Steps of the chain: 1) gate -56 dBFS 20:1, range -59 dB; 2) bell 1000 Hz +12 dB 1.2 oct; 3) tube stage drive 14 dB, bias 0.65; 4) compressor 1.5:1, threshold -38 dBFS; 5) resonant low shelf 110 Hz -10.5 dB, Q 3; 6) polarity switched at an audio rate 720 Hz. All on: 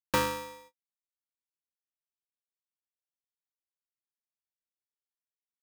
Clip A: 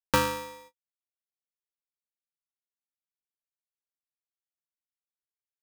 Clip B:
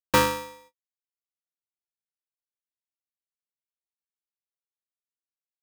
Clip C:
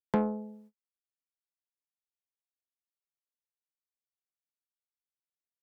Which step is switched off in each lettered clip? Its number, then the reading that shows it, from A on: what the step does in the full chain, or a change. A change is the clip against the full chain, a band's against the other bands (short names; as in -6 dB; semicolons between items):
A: 3, crest factor change +4.0 dB; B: 4, mean gain reduction 4.0 dB; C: 6, 8 kHz band -26.5 dB